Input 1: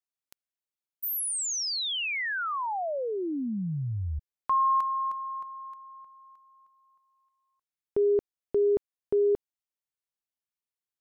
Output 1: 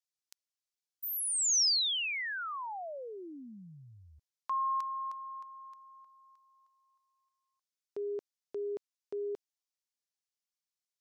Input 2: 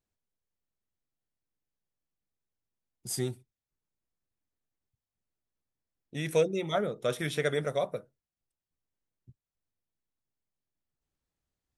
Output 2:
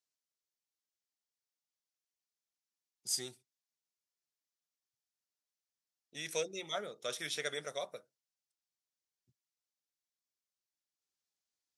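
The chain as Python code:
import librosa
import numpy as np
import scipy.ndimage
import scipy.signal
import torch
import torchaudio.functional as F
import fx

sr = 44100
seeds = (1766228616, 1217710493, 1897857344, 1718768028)

y = fx.highpass(x, sr, hz=660.0, slope=6)
y = fx.peak_eq(y, sr, hz=5500.0, db=12.0, octaves=1.5)
y = F.gain(torch.from_numpy(y), -7.5).numpy()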